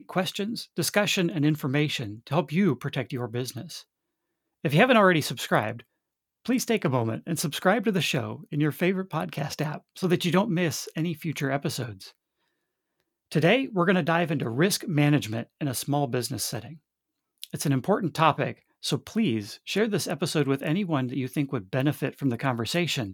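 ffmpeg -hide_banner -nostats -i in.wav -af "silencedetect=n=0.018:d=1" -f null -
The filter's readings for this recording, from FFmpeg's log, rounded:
silence_start: 12.09
silence_end: 13.32 | silence_duration: 1.23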